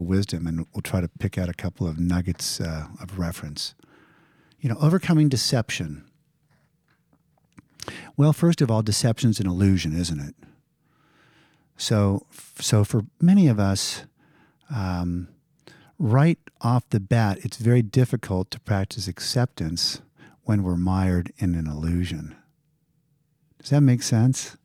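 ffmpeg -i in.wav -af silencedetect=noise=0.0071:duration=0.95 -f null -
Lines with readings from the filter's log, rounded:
silence_start: 6.04
silence_end: 7.58 | silence_duration: 1.53
silence_start: 10.48
silence_end: 11.79 | silence_duration: 1.31
silence_start: 22.37
silence_end: 23.60 | silence_duration: 1.23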